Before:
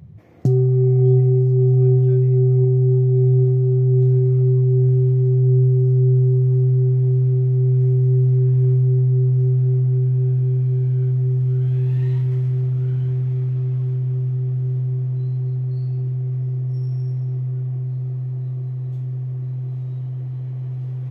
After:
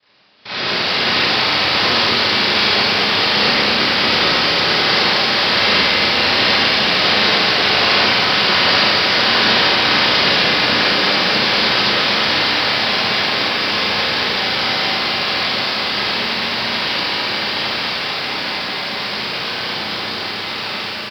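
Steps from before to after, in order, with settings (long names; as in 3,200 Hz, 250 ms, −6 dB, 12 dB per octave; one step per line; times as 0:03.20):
high-pass filter 400 Hz 6 dB per octave
brickwall limiter −22.5 dBFS, peak gain reduction 7.5 dB
automatic gain control gain up to 13.5 dB
cochlear-implant simulation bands 1
on a send: single-tap delay 77 ms −13 dB
on the sum: four-comb reverb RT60 1.1 s, combs from 30 ms, DRR −8.5 dB
downsampling to 11,025 Hz
feedback echo at a low word length 223 ms, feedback 80%, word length 6 bits, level −7.5 dB
level −9 dB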